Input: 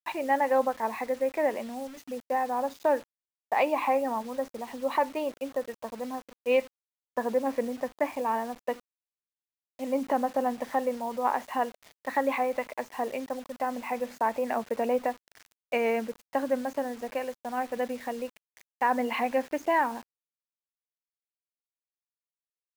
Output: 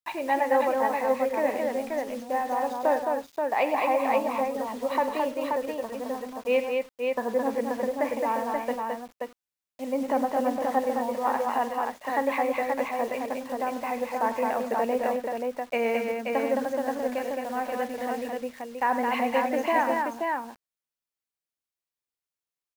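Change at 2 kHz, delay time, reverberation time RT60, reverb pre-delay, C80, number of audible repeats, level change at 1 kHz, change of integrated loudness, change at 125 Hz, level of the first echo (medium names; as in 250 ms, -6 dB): +2.5 dB, 47 ms, no reverb, no reverb, no reverb, 4, +2.5 dB, +2.5 dB, no reading, -15.0 dB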